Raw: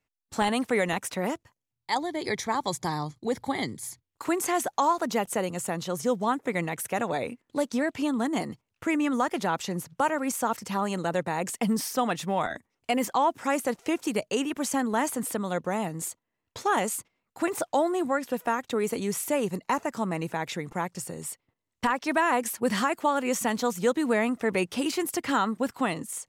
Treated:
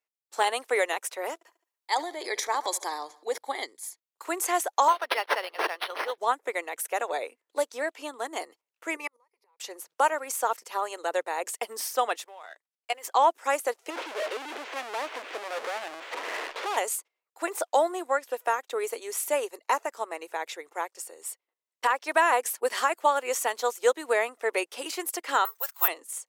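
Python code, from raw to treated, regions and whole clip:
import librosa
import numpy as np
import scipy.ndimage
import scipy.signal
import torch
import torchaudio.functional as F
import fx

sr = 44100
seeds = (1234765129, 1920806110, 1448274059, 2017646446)

y = fx.chain(x, sr, fx.echo_feedback(ms=71, feedback_pct=52, wet_db=-22),
    fx.transient(attack_db=-1, sustain_db=9), at=(1.34, 3.38))
y = fx.chain(y, sr, fx.weighting(curve='ITU-R 468'),
    fx.resample_linear(factor=6), at=(4.88, 6.18))
y = fx.chain(y, sr, fx.ripple_eq(per_octave=0.87, db=16),
    fx.gate_flip(shuts_db=-19.0, range_db=-37), at=(8.96, 9.6))
y = fx.chain(y, sr, fx.law_mismatch(coded='A'),
    fx.weighting(curve='A'),
    fx.level_steps(step_db=13), at=(12.24, 13.05))
y = fx.chain(y, sr, fx.clip_1bit(),
    fx.lowpass(hz=2900.0, slope=24),
    fx.leveller(passes=2), at=(13.9, 16.77))
y = fx.chain(y, sr, fx.highpass(hz=1100.0, slope=12),
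    fx.resample_bad(factor=3, down='none', up='zero_stuff'), at=(25.45, 25.88))
y = scipy.signal.sosfilt(scipy.signal.cheby2(4, 40, 200.0, 'highpass', fs=sr, output='sos'), y)
y = fx.high_shelf(y, sr, hz=8500.0, db=4.5)
y = fx.upward_expand(y, sr, threshold_db=-43.0, expansion=1.5)
y = F.gain(torch.from_numpy(y), 3.5).numpy()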